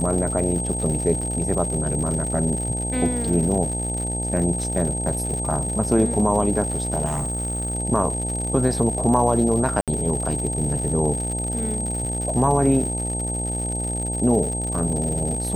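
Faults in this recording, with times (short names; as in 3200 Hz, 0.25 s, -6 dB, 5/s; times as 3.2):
buzz 60 Hz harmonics 15 -28 dBFS
crackle 140/s -28 dBFS
tone 8400 Hz -27 dBFS
1.21–1.22 gap 5.1 ms
7.05–7.75 clipped -21 dBFS
9.81–9.88 gap 67 ms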